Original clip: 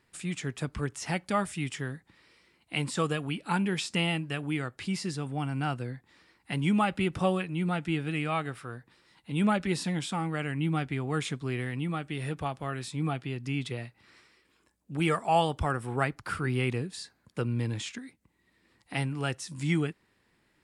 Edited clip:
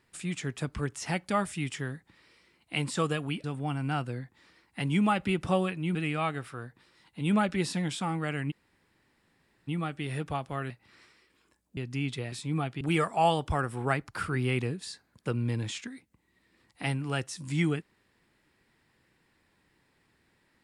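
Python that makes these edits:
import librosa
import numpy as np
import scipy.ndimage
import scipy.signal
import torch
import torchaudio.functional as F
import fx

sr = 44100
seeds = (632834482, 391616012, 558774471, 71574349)

y = fx.edit(x, sr, fx.cut(start_s=3.44, length_s=1.72),
    fx.cut(start_s=7.67, length_s=0.39),
    fx.room_tone_fill(start_s=10.62, length_s=1.17, crossfade_s=0.02),
    fx.swap(start_s=12.81, length_s=0.49, other_s=13.85, other_length_s=1.07), tone=tone)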